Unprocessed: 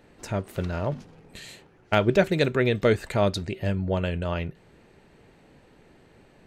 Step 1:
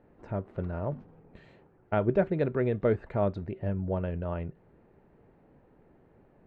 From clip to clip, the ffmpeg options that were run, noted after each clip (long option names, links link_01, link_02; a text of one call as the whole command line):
ffmpeg -i in.wav -af "lowpass=1200,volume=-4.5dB" out.wav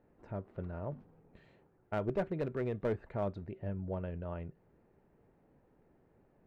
ffmpeg -i in.wav -af "aeval=exprs='clip(val(0),-1,0.0794)':channel_layout=same,volume=-7.5dB" out.wav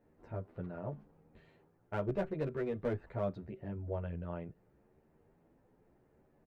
ffmpeg -i in.wav -filter_complex "[0:a]asplit=2[link_01][link_02];[link_02]adelay=10.6,afreqshift=0.79[link_03];[link_01][link_03]amix=inputs=2:normalize=1,volume=2dB" out.wav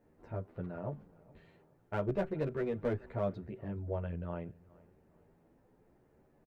ffmpeg -i in.wav -filter_complex "[0:a]asplit=2[link_01][link_02];[link_02]adelay=420,lowpass=frequency=4000:poles=1,volume=-23.5dB,asplit=2[link_03][link_04];[link_04]adelay=420,lowpass=frequency=4000:poles=1,volume=0.38[link_05];[link_01][link_03][link_05]amix=inputs=3:normalize=0,volume=1.5dB" out.wav